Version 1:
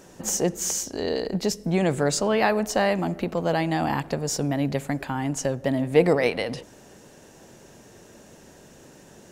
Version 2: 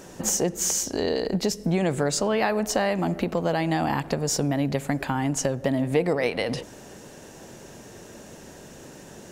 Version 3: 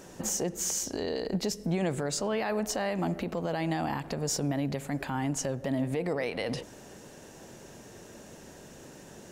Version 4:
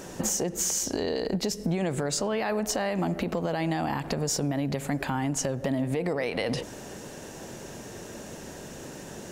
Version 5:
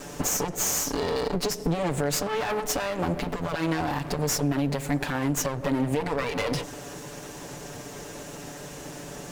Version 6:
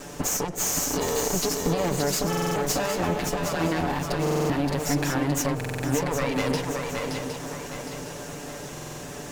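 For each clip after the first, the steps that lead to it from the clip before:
compression 3:1, threshold -27 dBFS, peak gain reduction 11.5 dB; trim +5 dB
peak limiter -16.5 dBFS, peak gain reduction 7.5 dB; trim -4.5 dB
compression, threshold -32 dBFS, peak gain reduction 7 dB; trim +7.5 dB
comb filter that takes the minimum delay 6.9 ms; trim +3.5 dB
shuffle delay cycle 763 ms, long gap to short 3:1, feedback 41%, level -4.5 dB; buffer glitch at 2.28/4.22/5.56/8.73 s, samples 2048, times 5

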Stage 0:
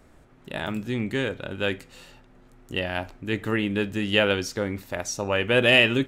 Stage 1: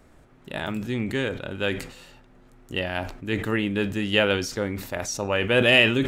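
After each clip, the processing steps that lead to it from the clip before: decay stretcher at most 89 dB/s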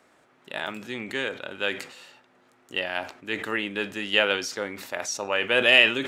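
frequency weighting A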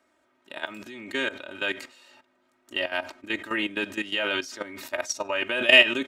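comb 3.2 ms, depth 79%; level held to a coarse grid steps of 14 dB; trim +1.5 dB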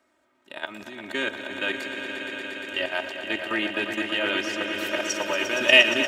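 echo with a slow build-up 117 ms, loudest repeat 5, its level -10 dB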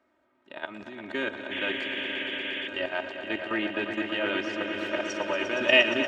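tape spacing loss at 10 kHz 21 dB; painted sound noise, 1.51–2.68 s, 1.6–3.5 kHz -35 dBFS

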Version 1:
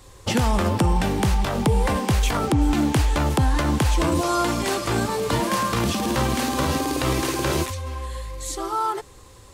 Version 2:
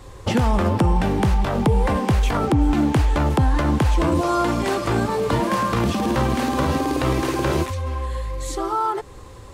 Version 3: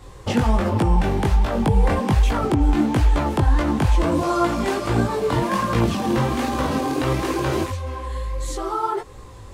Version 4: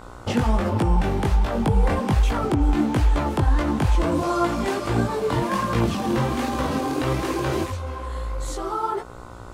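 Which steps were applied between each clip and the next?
treble shelf 3 kHz -10.5 dB; in parallel at +2.5 dB: compression, threshold -32 dBFS, peak gain reduction 16 dB
chorus voices 2, 1.3 Hz, delay 20 ms, depth 3.3 ms; trim +2 dB
mains buzz 60 Hz, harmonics 25, -41 dBFS -1 dB/octave; trim -2 dB

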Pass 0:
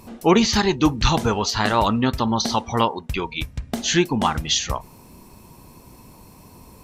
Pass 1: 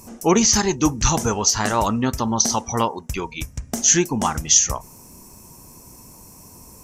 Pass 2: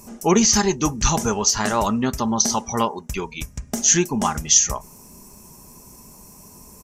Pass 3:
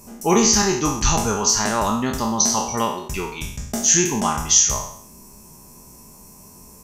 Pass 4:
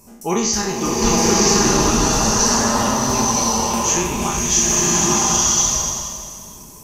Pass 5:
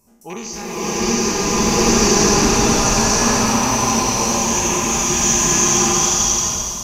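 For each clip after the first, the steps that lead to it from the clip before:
resonant high shelf 4.9 kHz +7.5 dB, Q 3; trim -1 dB
comb 4.9 ms, depth 35%; trim -1 dB
spectral sustain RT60 0.66 s; trim -2 dB
swelling reverb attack 1050 ms, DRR -6.5 dB; trim -3.5 dB
rattle on loud lows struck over -23 dBFS, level -15 dBFS; swelling reverb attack 740 ms, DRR -11.5 dB; trim -11 dB

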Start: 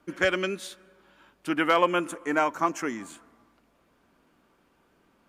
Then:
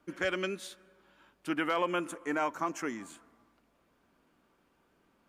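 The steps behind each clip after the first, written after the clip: peak limiter -14.5 dBFS, peak gain reduction 4.5 dB; trim -5 dB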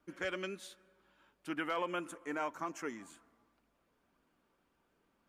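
flange 1.9 Hz, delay 0.5 ms, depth 1.9 ms, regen +78%; trim -1.5 dB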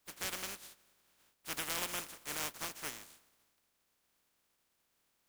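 spectral contrast reduction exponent 0.19; trim -1.5 dB

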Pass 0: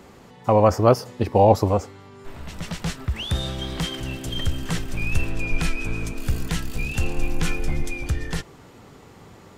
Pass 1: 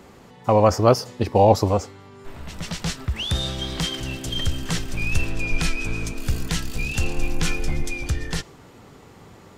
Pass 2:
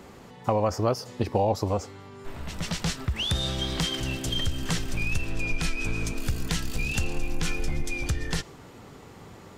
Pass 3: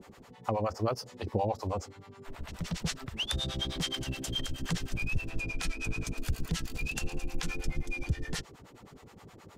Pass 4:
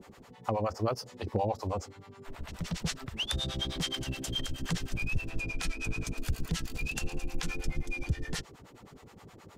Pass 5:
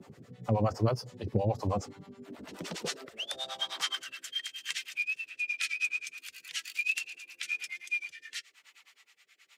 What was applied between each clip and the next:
dynamic bell 5.2 kHz, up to +6 dB, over -45 dBFS, Q 0.81
compression 3:1, threshold -23 dBFS, peak gain reduction 11 dB
harmonic tremolo 9.5 Hz, depth 100%, crossover 530 Hz; trim -1.5 dB
hard clipper -17 dBFS, distortion -44 dB
coarse spectral quantiser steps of 15 dB; rotary cabinet horn 1 Hz; high-pass sweep 120 Hz -> 2.3 kHz, 1.68–4.58 s; trim +2 dB

